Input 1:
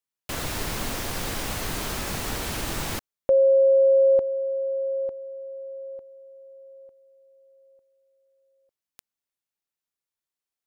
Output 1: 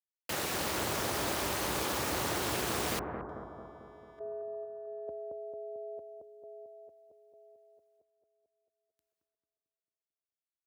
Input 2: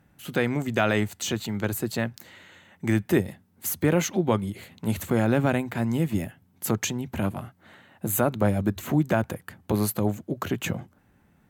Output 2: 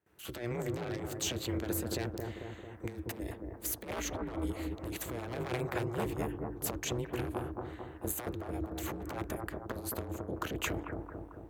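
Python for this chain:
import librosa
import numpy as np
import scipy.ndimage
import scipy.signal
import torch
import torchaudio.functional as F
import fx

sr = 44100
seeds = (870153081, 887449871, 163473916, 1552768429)

y = np.minimum(x, 2.0 * 10.0 ** (-18.5 / 20.0) - x)
y = fx.gate_hold(y, sr, open_db=-53.0, close_db=-61.0, hold_ms=166.0, range_db=-16, attack_ms=1.7, release_ms=181.0)
y = scipy.signal.sosfilt(scipy.signal.ellip(8, 1.0, 40, 170.0, 'highpass', fs=sr, output='sos'), y)
y = fx.over_compress(y, sr, threshold_db=-30.0, ratio=-0.5)
y = y * np.sin(2.0 * np.pi * 120.0 * np.arange(len(y)) / sr)
y = fx.echo_bbd(y, sr, ms=222, stages=2048, feedback_pct=61, wet_db=-3.0)
y = F.gain(torch.from_numpy(y), -3.5).numpy()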